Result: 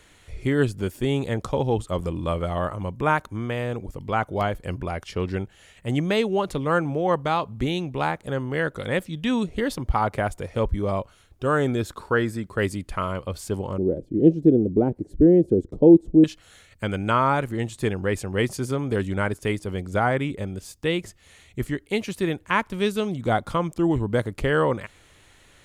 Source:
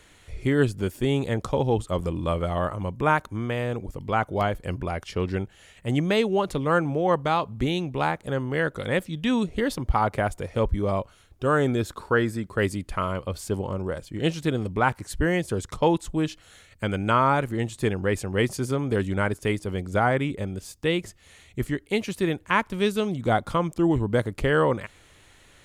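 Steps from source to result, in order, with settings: 13.78–16.24 EQ curve 110 Hz 0 dB, 340 Hz +13 dB, 690 Hz -3 dB, 1100 Hz -24 dB

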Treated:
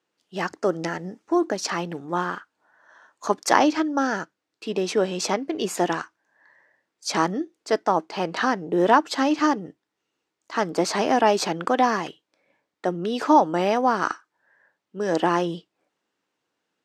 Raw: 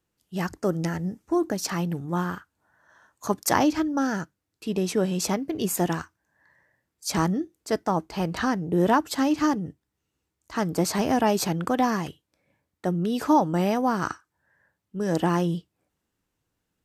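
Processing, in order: BPF 340–5500 Hz; gain +5 dB

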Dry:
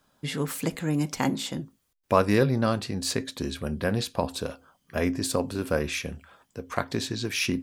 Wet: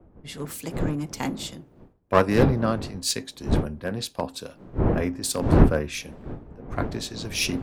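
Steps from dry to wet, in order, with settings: one-sided fold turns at -19 dBFS; wind noise 330 Hz -29 dBFS; three-band expander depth 100%; gain -1.5 dB

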